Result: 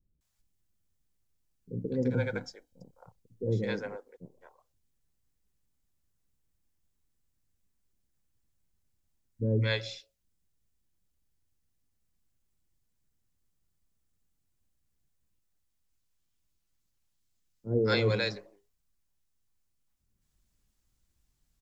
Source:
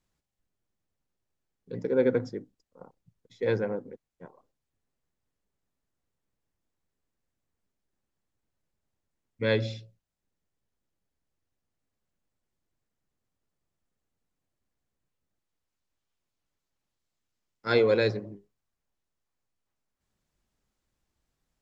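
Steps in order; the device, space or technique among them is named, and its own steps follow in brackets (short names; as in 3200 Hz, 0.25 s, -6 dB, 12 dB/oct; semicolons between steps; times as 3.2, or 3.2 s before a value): 1.89–2.84 comb 1.3 ms, depth 53%; smiley-face EQ (low shelf 120 Hz +8.5 dB; bell 850 Hz -3.5 dB 3 oct; high shelf 5100 Hz +8 dB); bands offset in time lows, highs 0.21 s, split 520 Hz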